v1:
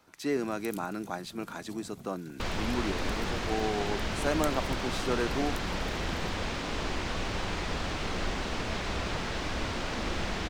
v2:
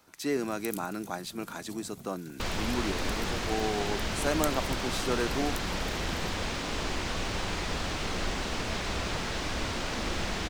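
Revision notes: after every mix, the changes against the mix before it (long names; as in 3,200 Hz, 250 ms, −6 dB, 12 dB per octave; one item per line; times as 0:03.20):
master: add high-shelf EQ 5,800 Hz +8 dB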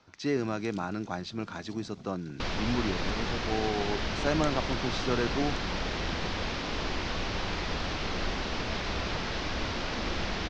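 speech: remove high-pass filter 210 Hz 12 dB per octave
master: add Butterworth low-pass 5,800 Hz 36 dB per octave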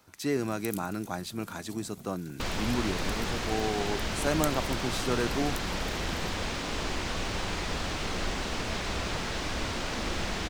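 master: remove Butterworth low-pass 5,800 Hz 36 dB per octave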